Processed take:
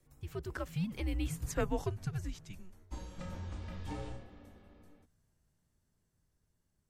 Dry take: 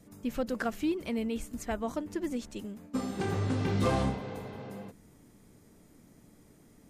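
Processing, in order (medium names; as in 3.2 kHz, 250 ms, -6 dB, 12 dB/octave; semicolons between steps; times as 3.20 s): Doppler pass-by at 1.52 s, 30 m/s, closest 12 m; frequency shift -180 Hz; trim +1.5 dB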